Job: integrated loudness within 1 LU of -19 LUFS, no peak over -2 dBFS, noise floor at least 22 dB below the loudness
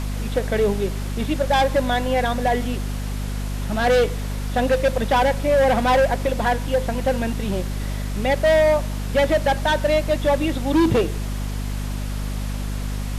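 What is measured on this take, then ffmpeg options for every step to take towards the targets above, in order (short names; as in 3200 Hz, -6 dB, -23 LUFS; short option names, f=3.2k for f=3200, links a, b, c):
hum 50 Hz; harmonics up to 250 Hz; hum level -24 dBFS; noise floor -27 dBFS; noise floor target -44 dBFS; loudness -21.5 LUFS; peak -9.5 dBFS; loudness target -19.0 LUFS
-> -af "bandreject=f=50:t=h:w=6,bandreject=f=100:t=h:w=6,bandreject=f=150:t=h:w=6,bandreject=f=200:t=h:w=6,bandreject=f=250:t=h:w=6"
-af "afftdn=nr=17:nf=-27"
-af "volume=2.5dB"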